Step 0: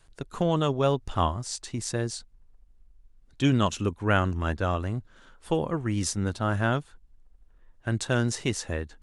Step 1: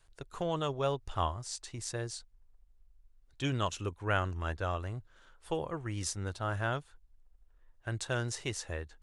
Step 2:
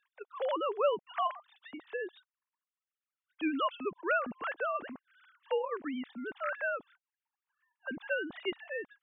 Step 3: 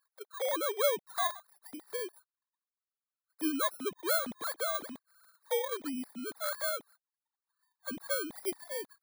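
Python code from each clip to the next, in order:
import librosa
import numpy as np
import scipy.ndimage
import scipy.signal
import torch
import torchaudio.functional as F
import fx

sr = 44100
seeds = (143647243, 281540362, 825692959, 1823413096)

y1 = fx.peak_eq(x, sr, hz=220.0, db=-10.5, octaves=0.94)
y1 = F.gain(torch.from_numpy(y1), -6.0).numpy()
y2 = fx.sine_speech(y1, sr)
y3 = fx.bit_reversed(y2, sr, seeds[0], block=16)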